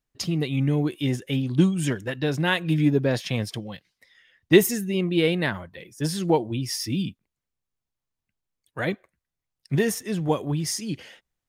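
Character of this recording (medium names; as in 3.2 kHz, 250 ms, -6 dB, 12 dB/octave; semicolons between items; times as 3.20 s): noise floor -86 dBFS; spectral tilt -5.5 dB/octave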